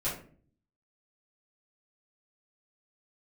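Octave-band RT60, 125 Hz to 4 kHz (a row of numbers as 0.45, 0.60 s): 0.85, 0.75, 0.50, 0.40, 0.35, 0.30 s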